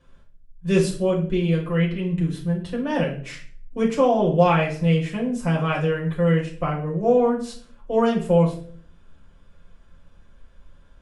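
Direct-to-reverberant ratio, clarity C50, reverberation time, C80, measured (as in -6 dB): -4.0 dB, 8.5 dB, 0.50 s, 13.0 dB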